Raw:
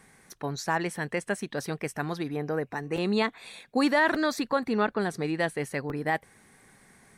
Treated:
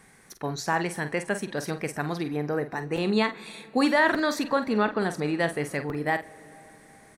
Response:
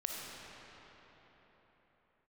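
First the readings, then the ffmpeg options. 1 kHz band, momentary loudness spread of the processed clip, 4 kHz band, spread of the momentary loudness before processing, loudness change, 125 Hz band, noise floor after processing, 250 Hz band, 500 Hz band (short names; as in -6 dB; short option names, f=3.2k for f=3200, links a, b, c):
+2.0 dB, 9 LU, +2.0 dB, 8 LU, +2.0 dB, +2.0 dB, -55 dBFS, +2.0 dB, +2.0 dB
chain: -filter_complex "[0:a]asplit=2[a][b];[b]adelay=47,volume=-10.5dB[c];[a][c]amix=inputs=2:normalize=0,asplit=2[d][e];[1:a]atrim=start_sample=2205,adelay=37[f];[e][f]afir=irnorm=-1:irlink=0,volume=-21dB[g];[d][g]amix=inputs=2:normalize=0,volume=1.5dB"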